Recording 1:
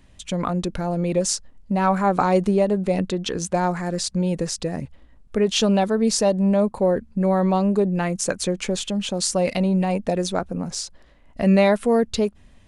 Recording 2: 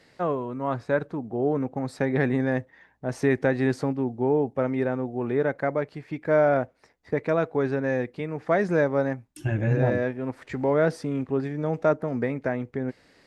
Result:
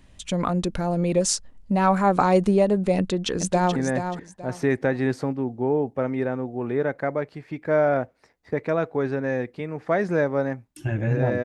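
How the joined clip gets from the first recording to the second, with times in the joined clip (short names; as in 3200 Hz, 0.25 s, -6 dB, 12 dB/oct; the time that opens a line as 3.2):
recording 1
2.97–3.76 echo throw 0.43 s, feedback 25%, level -7.5 dB
3.76 switch to recording 2 from 2.36 s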